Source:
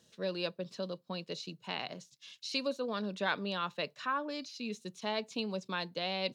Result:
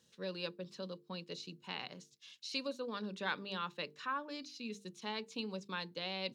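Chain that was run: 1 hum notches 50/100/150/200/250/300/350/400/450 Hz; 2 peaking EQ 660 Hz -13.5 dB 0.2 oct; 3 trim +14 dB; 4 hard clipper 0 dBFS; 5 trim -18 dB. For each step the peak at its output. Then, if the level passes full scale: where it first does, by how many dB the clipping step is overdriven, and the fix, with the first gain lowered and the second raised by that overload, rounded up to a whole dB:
-17.5 dBFS, -18.5 dBFS, -4.5 dBFS, -4.5 dBFS, -22.5 dBFS; nothing clips

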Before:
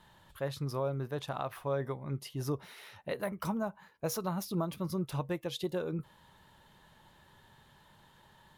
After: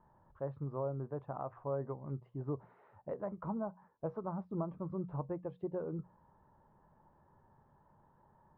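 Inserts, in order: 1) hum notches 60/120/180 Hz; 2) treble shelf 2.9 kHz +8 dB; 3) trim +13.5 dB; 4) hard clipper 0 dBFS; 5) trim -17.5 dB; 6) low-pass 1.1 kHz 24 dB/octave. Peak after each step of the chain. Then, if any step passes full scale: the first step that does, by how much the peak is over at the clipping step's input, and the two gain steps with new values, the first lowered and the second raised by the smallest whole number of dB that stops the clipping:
-20.5 dBFS, -19.0 dBFS, -5.5 dBFS, -5.5 dBFS, -23.0 dBFS, -25.5 dBFS; nothing clips

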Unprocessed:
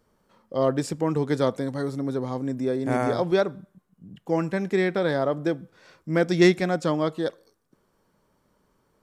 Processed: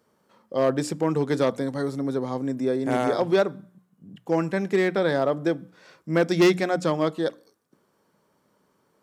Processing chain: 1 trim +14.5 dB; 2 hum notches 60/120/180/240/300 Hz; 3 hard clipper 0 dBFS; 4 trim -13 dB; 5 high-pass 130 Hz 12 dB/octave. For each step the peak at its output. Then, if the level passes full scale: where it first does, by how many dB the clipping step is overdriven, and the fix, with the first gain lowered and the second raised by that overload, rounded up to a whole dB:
+8.5 dBFS, +8.0 dBFS, 0.0 dBFS, -13.0 dBFS, -7.5 dBFS; step 1, 8.0 dB; step 1 +6.5 dB, step 4 -5 dB

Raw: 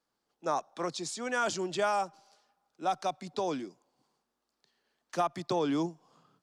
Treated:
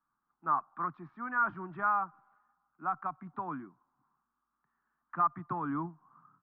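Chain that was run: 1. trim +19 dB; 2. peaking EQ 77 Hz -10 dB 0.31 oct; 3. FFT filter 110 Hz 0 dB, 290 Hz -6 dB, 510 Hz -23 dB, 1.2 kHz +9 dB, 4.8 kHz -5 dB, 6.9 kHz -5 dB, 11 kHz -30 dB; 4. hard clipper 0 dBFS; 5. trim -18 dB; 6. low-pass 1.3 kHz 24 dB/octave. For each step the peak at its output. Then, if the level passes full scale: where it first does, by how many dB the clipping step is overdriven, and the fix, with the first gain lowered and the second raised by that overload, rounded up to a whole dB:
+1.5 dBFS, +1.5 dBFS, +4.5 dBFS, 0.0 dBFS, -18.0 dBFS, -18.0 dBFS; step 1, 4.5 dB; step 1 +14 dB, step 5 -13 dB

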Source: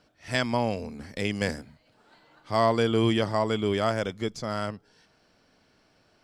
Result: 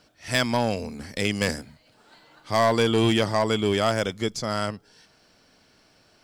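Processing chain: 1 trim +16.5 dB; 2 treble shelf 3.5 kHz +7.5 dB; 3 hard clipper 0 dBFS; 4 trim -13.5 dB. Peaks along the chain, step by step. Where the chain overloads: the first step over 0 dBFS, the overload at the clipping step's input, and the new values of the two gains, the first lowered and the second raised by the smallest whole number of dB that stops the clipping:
+7.0 dBFS, +7.5 dBFS, 0.0 dBFS, -13.5 dBFS; step 1, 7.5 dB; step 1 +8.5 dB, step 4 -5.5 dB

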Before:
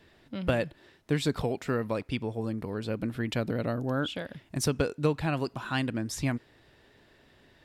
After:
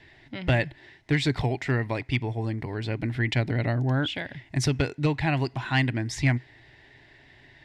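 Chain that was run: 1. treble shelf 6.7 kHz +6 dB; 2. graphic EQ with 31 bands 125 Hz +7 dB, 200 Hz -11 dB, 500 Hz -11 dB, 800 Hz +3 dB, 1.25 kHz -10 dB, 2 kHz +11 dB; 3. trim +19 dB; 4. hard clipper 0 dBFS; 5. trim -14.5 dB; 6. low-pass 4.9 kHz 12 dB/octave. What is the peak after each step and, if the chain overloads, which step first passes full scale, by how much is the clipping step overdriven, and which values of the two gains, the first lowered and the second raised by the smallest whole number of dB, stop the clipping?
-14.0 dBFS, -14.5 dBFS, +4.5 dBFS, 0.0 dBFS, -14.5 dBFS, -14.0 dBFS; step 3, 4.5 dB; step 3 +14 dB, step 5 -9.5 dB

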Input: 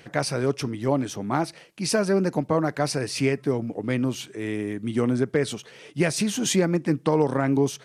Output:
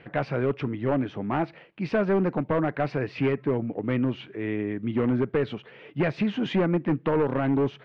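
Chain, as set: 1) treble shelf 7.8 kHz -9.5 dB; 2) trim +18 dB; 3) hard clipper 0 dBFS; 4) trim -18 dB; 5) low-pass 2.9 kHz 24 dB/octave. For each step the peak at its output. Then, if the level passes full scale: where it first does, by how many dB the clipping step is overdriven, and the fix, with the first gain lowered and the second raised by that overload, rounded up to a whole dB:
-8.0 dBFS, +10.0 dBFS, 0.0 dBFS, -18.0 dBFS, -16.5 dBFS; step 2, 10.0 dB; step 2 +8 dB, step 4 -8 dB

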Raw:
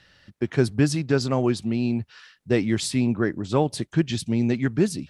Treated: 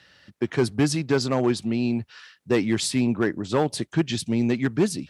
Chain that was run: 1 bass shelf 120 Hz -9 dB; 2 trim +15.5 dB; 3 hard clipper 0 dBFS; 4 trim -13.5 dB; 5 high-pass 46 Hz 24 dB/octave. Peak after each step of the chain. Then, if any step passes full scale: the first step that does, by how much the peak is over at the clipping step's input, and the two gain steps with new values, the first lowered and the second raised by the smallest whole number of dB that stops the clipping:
-8.0 dBFS, +7.5 dBFS, 0.0 dBFS, -13.5 dBFS, -10.0 dBFS; step 2, 7.5 dB; step 2 +7.5 dB, step 4 -5.5 dB

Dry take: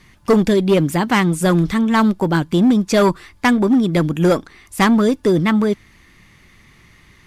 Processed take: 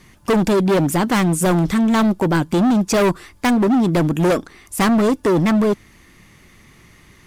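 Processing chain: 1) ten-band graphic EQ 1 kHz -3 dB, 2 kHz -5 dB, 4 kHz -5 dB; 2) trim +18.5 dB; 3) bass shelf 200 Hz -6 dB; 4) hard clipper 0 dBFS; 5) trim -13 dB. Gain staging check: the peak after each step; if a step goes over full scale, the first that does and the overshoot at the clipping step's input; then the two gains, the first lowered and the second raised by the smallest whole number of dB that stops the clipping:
-7.0 dBFS, +11.5 dBFS, +10.0 dBFS, 0.0 dBFS, -13.0 dBFS; step 2, 10.0 dB; step 2 +8.5 dB, step 5 -3 dB

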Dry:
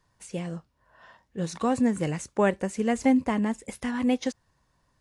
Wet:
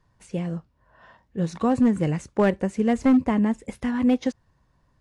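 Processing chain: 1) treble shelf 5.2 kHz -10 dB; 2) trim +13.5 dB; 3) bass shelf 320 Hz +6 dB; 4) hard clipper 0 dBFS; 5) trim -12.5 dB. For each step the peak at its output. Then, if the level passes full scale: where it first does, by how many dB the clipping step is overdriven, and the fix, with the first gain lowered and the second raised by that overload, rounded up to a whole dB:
-10.0 dBFS, +3.5 dBFS, +6.0 dBFS, 0.0 dBFS, -12.5 dBFS; step 2, 6.0 dB; step 2 +7.5 dB, step 5 -6.5 dB

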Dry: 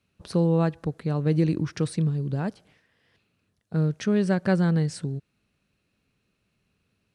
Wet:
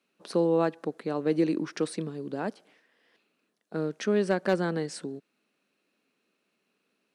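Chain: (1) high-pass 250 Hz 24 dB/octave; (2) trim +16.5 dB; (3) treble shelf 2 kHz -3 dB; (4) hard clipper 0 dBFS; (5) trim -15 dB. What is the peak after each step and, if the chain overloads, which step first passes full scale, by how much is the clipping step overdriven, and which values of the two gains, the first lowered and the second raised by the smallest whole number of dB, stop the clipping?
-12.0 dBFS, +4.5 dBFS, +3.5 dBFS, 0.0 dBFS, -15.0 dBFS; step 2, 3.5 dB; step 2 +12.5 dB, step 5 -11 dB

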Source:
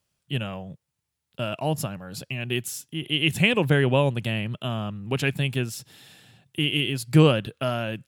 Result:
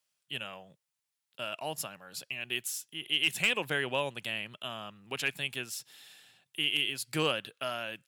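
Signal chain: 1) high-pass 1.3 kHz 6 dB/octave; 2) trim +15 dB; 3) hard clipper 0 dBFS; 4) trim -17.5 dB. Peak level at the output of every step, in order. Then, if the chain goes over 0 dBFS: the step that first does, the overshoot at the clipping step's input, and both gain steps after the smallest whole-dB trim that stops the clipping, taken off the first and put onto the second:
-6.0 dBFS, +9.0 dBFS, 0.0 dBFS, -17.5 dBFS; step 2, 9.0 dB; step 2 +6 dB, step 4 -8.5 dB

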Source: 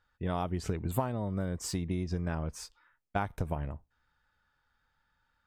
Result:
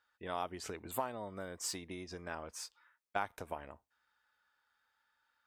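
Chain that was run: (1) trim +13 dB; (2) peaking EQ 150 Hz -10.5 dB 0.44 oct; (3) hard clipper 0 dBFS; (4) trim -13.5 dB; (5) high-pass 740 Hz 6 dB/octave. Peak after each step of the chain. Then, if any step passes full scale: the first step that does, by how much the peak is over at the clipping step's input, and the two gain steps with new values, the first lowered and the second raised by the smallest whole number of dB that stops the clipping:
-1.0 dBFS, -3.5 dBFS, -3.5 dBFS, -17.0 dBFS, -17.5 dBFS; nothing clips

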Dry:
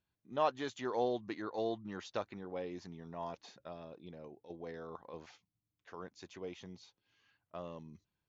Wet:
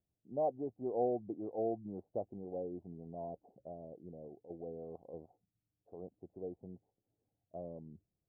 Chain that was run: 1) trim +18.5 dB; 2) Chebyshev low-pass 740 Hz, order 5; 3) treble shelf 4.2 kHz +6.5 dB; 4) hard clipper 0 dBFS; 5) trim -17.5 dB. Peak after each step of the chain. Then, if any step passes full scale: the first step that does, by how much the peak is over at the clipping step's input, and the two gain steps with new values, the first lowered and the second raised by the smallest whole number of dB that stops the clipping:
-1.0 dBFS, -5.0 dBFS, -5.0 dBFS, -5.0 dBFS, -22.5 dBFS; nothing clips

